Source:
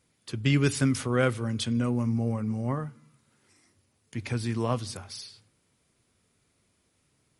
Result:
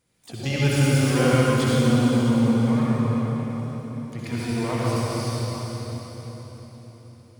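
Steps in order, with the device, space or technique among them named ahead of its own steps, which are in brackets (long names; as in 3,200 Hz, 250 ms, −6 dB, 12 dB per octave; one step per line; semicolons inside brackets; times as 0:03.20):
feedback delay with all-pass diffusion 473 ms, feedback 41%, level −11 dB
shimmer-style reverb (pitch-shifted copies added +12 semitones −9 dB; convolution reverb RT60 4.0 s, pre-delay 59 ms, DRR −7.5 dB)
level −3 dB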